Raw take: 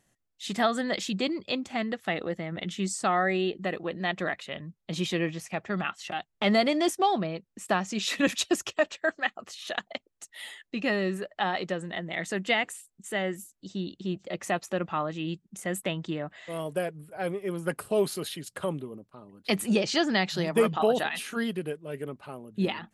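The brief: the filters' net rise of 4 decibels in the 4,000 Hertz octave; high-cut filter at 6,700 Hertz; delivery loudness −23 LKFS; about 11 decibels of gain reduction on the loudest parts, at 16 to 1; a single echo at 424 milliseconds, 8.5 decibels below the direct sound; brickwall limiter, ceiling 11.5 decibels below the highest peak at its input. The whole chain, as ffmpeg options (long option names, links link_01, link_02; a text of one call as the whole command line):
ffmpeg -i in.wav -af "lowpass=6700,equalizer=frequency=4000:width_type=o:gain=5.5,acompressor=threshold=-29dB:ratio=16,alimiter=level_in=2dB:limit=-24dB:level=0:latency=1,volume=-2dB,aecho=1:1:424:0.376,volume=14dB" out.wav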